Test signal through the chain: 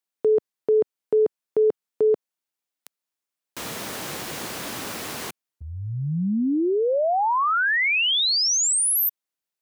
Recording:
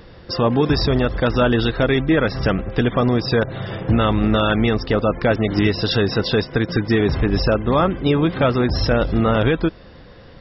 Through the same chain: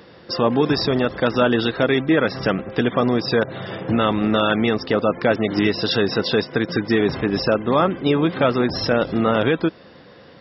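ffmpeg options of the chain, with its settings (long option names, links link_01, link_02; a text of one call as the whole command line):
ffmpeg -i in.wav -af "highpass=170" out.wav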